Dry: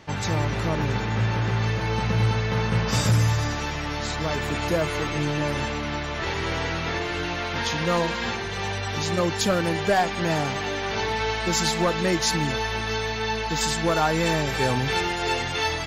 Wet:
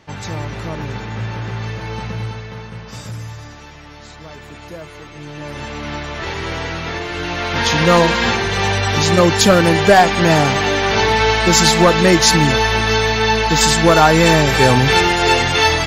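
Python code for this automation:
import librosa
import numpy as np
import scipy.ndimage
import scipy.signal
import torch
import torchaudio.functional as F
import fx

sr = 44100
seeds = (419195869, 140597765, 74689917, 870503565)

y = fx.gain(x, sr, db=fx.line((2.01, -1.0), (2.76, -9.5), (5.14, -9.5), (5.89, 3.0), (7.09, 3.0), (7.79, 11.5)))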